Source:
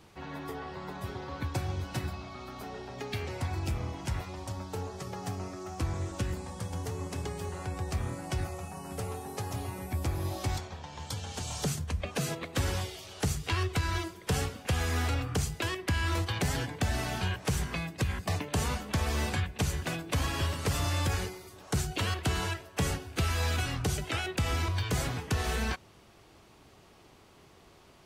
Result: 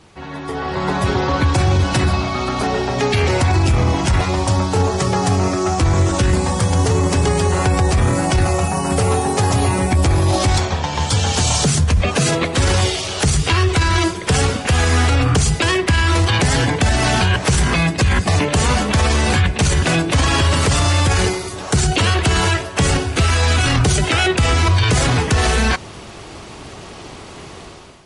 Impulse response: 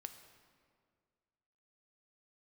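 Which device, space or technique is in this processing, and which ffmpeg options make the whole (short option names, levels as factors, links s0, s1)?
low-bitrate web radio: -af "dynaudnorm=f=460:g=3:m=5.01,alimiter=limit=0.158:level=0:latency=1:release=12,volume=2.82" -ar 44100 -c:a libmp3lame -b:a 48k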